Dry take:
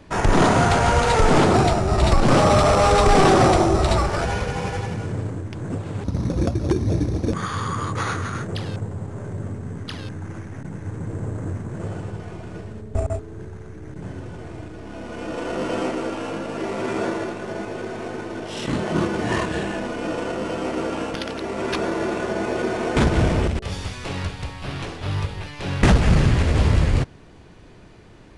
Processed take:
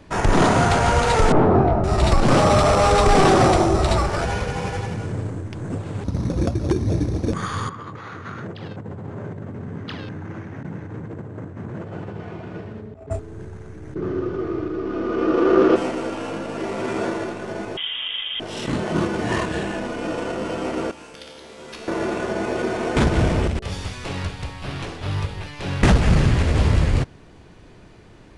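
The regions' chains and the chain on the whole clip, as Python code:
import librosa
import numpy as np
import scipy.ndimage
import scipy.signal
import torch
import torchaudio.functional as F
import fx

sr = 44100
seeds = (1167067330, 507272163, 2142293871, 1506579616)

y = fx.chain(x, sr, fx.lowpass(hz=1100.0, slope=12),
    fx.doubler(ms=23.0, db=-6.0), at=(1.32, 1.84))
y = fx.chain(y, sr, fx.over_compress(threshold_db=-31.0, ratio=-1.0),
    fx.bandpass_edges(low_hz=110.0, high_hz=3500.0), at=(7.69, 13.11))
y = fx.chain(y, sr, fx.lowpass(hz=5600.0, slope=24),
    fx.small_body(hz=(370.0, 1200.0), ring_ms=30, db=18),
    fx.doppler_dist(depth_ms=0.11), at=(13.95, 15.76))
y = fx.chain(y, sr, fx.highpass(hz=110.0, slope=12),
    fx.low_shelf(hz=350.0, db=6.5),
    fx.freq_invert(carrier_hz=3500), at=(17.77, 18.4))
y = fx.chain(y, sr, fx.high_shelf(hz=2400.0, db=10.0),
    fx.comb_fb(f0_hz=74.0, decay_s=1.8, harmonics='all', damping=0.0, mix_pct=90), at=(20.91, 21.88))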